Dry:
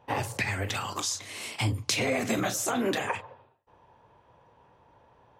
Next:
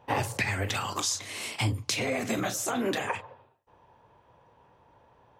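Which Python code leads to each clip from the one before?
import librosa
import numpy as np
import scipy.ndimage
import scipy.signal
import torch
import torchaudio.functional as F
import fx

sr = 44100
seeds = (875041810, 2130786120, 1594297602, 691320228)

y = fx.rider(x, sr, range_db=3, speed_s=0.5)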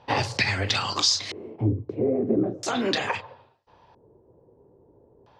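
y = fx.filter_lfo_lowpass(x, sr, shape='square', hz=0.38, low_hz=390.0, high_hz=4700.0, q=3.5)
y = y * 10.0 ** (3.0 / 20.0)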